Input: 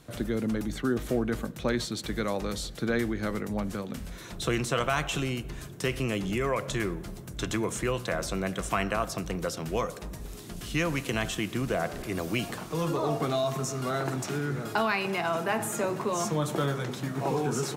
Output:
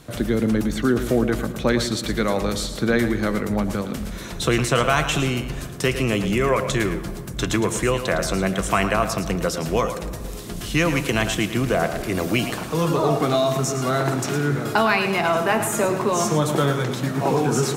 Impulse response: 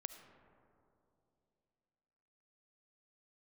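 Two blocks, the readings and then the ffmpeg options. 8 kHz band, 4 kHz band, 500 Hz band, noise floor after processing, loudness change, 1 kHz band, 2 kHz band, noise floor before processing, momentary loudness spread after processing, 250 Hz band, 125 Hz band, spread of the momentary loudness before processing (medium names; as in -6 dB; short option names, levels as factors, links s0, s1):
+8.5 dB, +8.5 dB, +8.5 dB, -32 dBFS, +8.5 dB, +8.5 dB, +8.5 dB, -42 dBFS, 6 LU, +8.5 dB, +8.5 dB, 6 LU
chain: -filter_complex "[0:a]asplit=2[s0][s1];[1:a]atrim=start_sample=2205,adelay=110[s2];[s1][s2]afir=irnorm=-1:irlink=0,volume=0.531[s3];[s0][s3]amix=inputs=2:normalize=0,volume=2.51"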